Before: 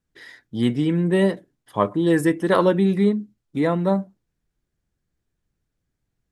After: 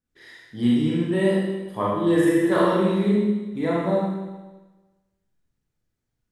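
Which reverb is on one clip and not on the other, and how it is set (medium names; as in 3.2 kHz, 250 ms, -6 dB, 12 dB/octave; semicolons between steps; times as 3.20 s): Schroeder reverb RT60 1.2 s, combs from 26 ms, DRR -6 dB; trim -8 dB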